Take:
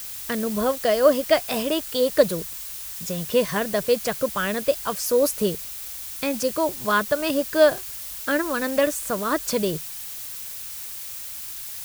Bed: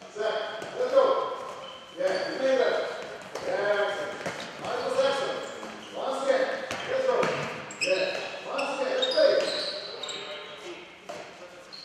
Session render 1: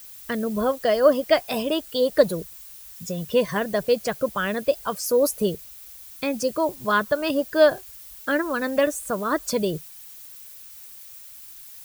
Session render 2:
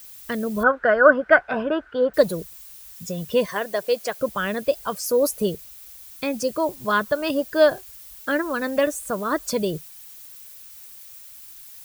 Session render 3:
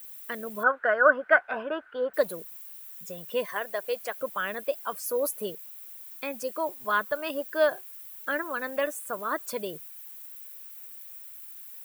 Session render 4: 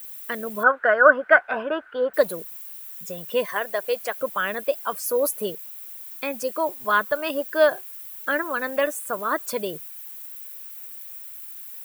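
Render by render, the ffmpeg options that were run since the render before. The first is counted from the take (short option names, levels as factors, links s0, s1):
-af "afftdn=nr=11:nf=-35"
-filter_complex "[0:a]asettb=1/sr,asplit=3[s0][s1][s2];[s0]atrim=end=0.634[s3];[s1]atrim=start=0.63:end=2.14,asetpts=PTS-STARTPTS,afade=t=in:d=0.004:c=qsin,afade=t=out:st=1.506:d=0.004:c=qsin,lowpass=f=1500:t=q:w=14[s4];[s2]atrim=start=2.136[s5];[s3][s4]acrossfade=d=0.004:c1=hsin:c2=qsin[s6];[s6][s5]acrossfade=d=0.004:c1=qsin:c2=hsin,asettb=1/sr,asplit=3[s7][s8][s9];[s7]atrim=end=3.464[s10];[s8]atrim=start=3.46:end=4.19,asetpts=PTS-STARTPTS,afade=t=in:d=0.004:c=qsin,afade=t=out:st=0.726:d=0.004:c=qsin,highpass=380[s11];[s9]atrim=start=4.186[s12];[s10][s11]acrossfade=d=0.004:c1=hsin:c2=qsin[s13];[s13][s12]acrossfade=d=0.004:c1=qsin:c2=hsin"
-af "highpass=f=1200:p=1,equalizer=f=5400:t=o:w=1.5:g=-12.5"
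-af "volume=1.88,alimiter=limit=0.891:level=0:latency=1"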